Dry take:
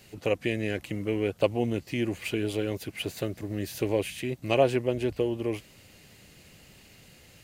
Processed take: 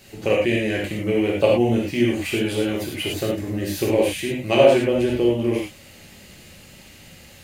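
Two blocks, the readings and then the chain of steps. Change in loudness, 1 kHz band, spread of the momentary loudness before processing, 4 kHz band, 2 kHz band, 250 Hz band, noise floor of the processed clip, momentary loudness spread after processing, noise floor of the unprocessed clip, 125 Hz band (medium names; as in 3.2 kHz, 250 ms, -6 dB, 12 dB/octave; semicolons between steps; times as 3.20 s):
+8.5 dB, +7.5 dB, 9 LU, +9.0 dB, +8.5 dB, +9.0 dB, -46 dBFS, 10 LU, -55 dBFS, +6.0 dB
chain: gated-style reverb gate 130 ms flat, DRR -3.5 dB; trim +3.5 dB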